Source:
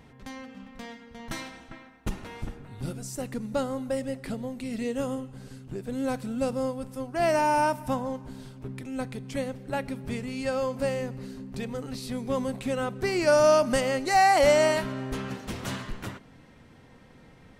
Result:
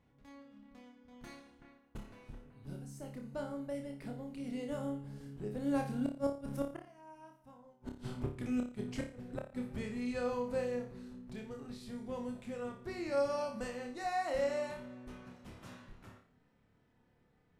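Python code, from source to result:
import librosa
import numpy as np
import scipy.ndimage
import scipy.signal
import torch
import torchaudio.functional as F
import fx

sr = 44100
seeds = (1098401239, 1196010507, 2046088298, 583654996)

y = fx.doppler_pass(x, sr, speed_mps=19, closest_m=6.3, pass_at_s=7.58)
y = fx.high_shelf(y, sr, hz=2400.0, db=-5.5)
y = fx.gate_flip(y, sr, shuts_db=-34.0, range_db=-38)
y = fx.room_flutter(y, sr, wall_m=4.9, rt60_s=0.38)
y = y * librosa.db_to_amplitude(9.0)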